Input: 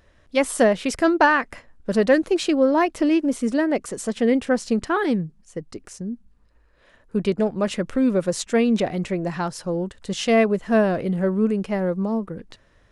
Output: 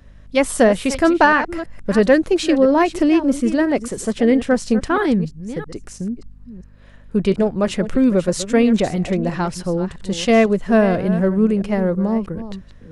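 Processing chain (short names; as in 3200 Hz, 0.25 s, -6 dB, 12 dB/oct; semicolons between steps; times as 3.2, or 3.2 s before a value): reverse delay 0.332 s, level -12.5 dB; low shelf 95 Hz +11 dB; hum 50 Hz, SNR 29 dB; gain +3 dB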